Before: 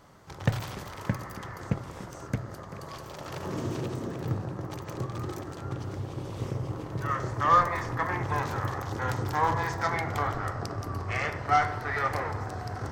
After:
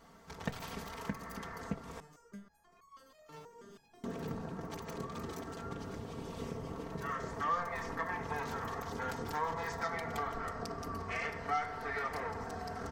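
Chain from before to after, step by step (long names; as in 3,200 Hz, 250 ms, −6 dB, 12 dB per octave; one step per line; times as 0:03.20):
comb filter 4.4 ms, depth 100%
downward compressor 2 to 1, threshold −31 dBFS, peak gain reduction 9.5 dB
0:02.00–0:04.04: step-sequenced resonator 6.2 Hz 150–1,100 Hz
level −6 dB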